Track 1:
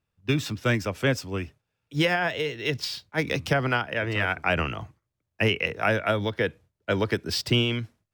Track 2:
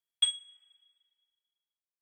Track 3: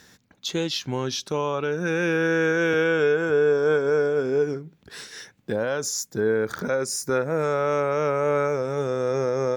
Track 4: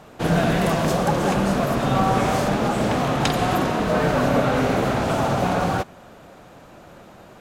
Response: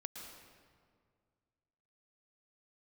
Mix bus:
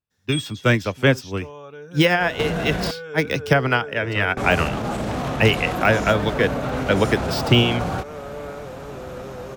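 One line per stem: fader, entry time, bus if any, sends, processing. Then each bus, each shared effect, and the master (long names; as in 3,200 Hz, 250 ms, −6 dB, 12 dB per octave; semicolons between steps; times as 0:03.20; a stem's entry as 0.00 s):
+2.0 dB, 0.00 s, no bus, no send, de-essing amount 60%; expander for the loud parts 1.5 to 1, over −44 dBFS
+2.5 dB, 0.10 s, bus A, no send, no processing
−18.5 dB, 0.10 s, no bus, no send, downward expander −53 dBFS; notch comb filter 330 Hz
0.0 dB, 2.20 s, muted 0:02.91–0:04.37, bus A, no send, parametric band 60 Hz +8.5 dB 1.3 octaves; downward compressor, threshold −24 dBFS, peak gain reduction 10 dB
bus A: 0.0 dB, brickwall limiter −23 dBFS, peak gain reduction 11.5 dB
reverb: not used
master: automatic gain control gain up to 7 dB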